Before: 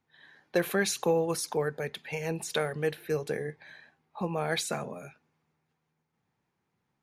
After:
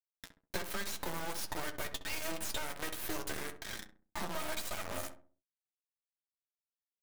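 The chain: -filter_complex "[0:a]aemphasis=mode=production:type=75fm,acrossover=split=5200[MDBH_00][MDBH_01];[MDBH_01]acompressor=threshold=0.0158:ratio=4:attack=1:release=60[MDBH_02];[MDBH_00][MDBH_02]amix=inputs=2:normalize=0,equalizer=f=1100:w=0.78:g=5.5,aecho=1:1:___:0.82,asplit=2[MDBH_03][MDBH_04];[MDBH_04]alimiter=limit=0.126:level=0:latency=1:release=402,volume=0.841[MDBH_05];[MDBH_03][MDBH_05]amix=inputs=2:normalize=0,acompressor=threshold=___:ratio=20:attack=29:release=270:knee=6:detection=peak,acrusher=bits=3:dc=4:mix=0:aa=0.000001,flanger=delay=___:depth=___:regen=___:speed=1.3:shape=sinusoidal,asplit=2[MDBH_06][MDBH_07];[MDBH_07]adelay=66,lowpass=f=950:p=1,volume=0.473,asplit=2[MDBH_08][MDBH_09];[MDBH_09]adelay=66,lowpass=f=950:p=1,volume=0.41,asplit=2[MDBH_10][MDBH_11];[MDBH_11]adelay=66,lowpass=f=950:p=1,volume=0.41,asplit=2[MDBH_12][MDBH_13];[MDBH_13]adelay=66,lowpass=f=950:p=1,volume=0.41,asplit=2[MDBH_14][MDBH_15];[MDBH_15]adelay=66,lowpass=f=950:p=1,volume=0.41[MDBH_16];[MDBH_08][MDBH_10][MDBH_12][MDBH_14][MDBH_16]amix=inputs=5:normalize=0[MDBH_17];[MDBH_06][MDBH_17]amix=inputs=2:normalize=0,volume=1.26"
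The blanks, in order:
3.2, 0.0224, 9.4, 1.7, 40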